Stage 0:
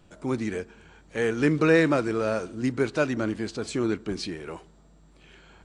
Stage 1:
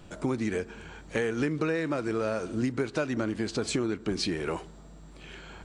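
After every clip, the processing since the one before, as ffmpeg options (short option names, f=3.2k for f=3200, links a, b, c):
-af "acompressor=threshold=-32dB:ratio=16,volume=7dB"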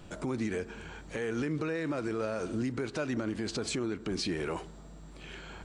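-af "alimiter=level_in=0.5dB:limit=-24dB:level=0:latency=1:release=42,volume=-0.5dB"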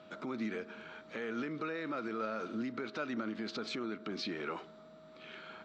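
-af "aeval=exprs='val(0)+0.00355*sin(2*PI*630*n/s)':c=same,highpass=220,equalizer=f=220:t=q:w=4:g=7,equalizer=f=1.3k:t=q:w=4:g=10,equalizer=f=2.2k:t=q:w=4:g=4,equalizer=f=3.7k:t=q:w=4:g=6,lowpass=f=5.3k:w=0.5412,lowpass=f=5.3k:w=1.3066,volume=-6.5dB"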